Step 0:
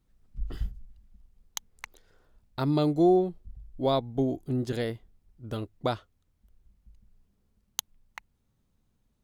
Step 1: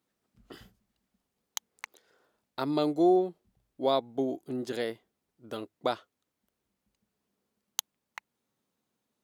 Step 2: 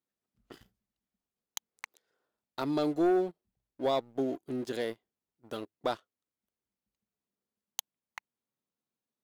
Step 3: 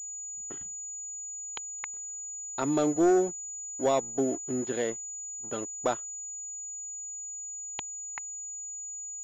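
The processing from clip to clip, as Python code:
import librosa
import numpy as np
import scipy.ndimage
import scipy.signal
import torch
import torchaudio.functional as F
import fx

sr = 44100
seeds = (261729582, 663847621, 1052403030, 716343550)

y1 = scipy.signal.sosfilt(scipy.signal.butter(2, 300.0, 'highpass', fs=sr, output='sos'), x)
y2 = fx.leveller(y1, sr, passes=2)
y2 = y2 * librosa.db_to_amplitude(-8.5)
y3 = fx.pwm(y2, sr, carrier_hz=6900.0)
y3 = y3 * librosa.db_to_amplitude(3.5)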